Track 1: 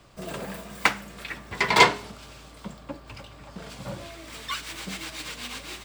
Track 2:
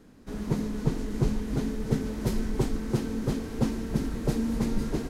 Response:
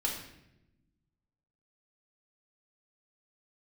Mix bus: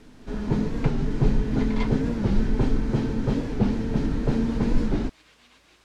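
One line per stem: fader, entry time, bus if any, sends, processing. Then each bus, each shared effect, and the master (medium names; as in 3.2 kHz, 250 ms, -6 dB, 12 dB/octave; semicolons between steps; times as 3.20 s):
-19.5 dB, 0.00 s, no send, word length cut 6-bit, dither triangular
+0.5 dB, 0.00 s, send -5.5 dB, slew-rate limiter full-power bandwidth 32 Hz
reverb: on, RT60 0.90 s, pre-delay 3 ms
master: Bessel low-pass 4.1 kHz, order 2; warped record 45 rpm, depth 160 cents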